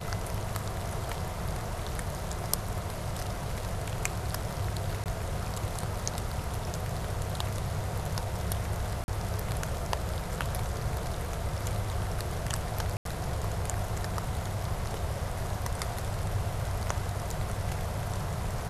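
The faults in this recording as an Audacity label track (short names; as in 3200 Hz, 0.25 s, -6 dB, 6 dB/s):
5.040000	5.060000	gap 18 ms
9.040000	9.080000	gap 41 ms
12.970000	13.050000	gap 83 ms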